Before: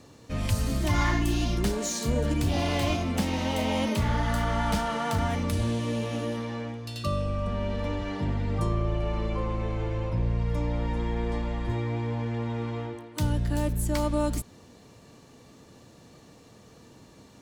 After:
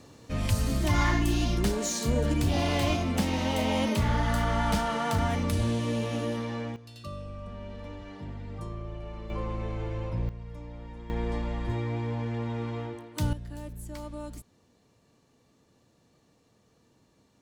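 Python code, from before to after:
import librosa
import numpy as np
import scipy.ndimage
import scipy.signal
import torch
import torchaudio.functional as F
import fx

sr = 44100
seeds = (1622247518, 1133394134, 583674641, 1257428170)

y = fx.gain(x, sr, db=fx.steps((0.0, 0.0), (6.76, -11.0), (9.3, -3.5), (10.29, -14.0), (11.1, -1.5), (13.33, -13.0)))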